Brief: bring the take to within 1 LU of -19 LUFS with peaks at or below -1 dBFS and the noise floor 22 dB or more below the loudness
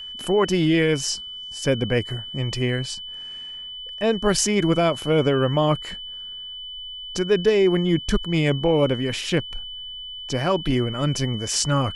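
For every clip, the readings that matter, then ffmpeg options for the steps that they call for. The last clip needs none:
steady tone 3 kHz; tone level -33 dBFS; loudness -22.5 LUFS; peak level -4.5 dBFS; loudness target -19.0 LUFS
-> -af "bandreject=f=3000:w=30"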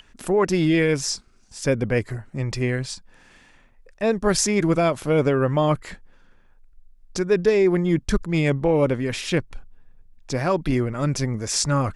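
steady tone not found; loudness -22.0 LUFS; peak level -4.5 dBFS; loudness target -19.0 LUFS
-> -af "volume=1.41"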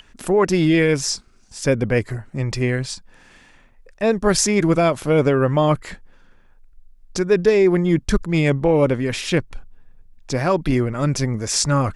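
loudness -19.5 LUFS; peak level -1.5 dBFS; noise floor -52 dBFS

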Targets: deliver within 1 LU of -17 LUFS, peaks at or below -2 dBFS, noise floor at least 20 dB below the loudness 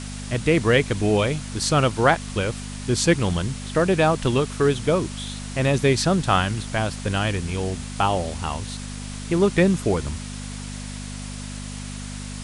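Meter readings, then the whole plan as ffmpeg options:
hum 50 Hz; highest harmonic 250 Hz; hum level -32 dBFS; noise floor -33 dBFS; noise floor target -43 dBFS; loudness -22.5 LUFS; peak level -3.0 dBFS; loudness target -17.0 LUFS
-> -af "bandreject=f=50:t=h:w=4,bandreject=f=100:t=h:w=4,bandreject=f=150:t=h:w=4,bandreject=f=200:t=h:w=4,bandreject=f=250:t=h:w=4"
-af "afftdn=nr=10:nf=-33"
-af "volume=1.88,alimiter=limit=0.794:level=0:latency=1"

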